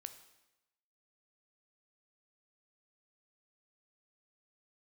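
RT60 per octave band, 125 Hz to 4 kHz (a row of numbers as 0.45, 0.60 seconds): 0.95, 0.95, 0.95, 0.95, 0.95, 0.90 seconds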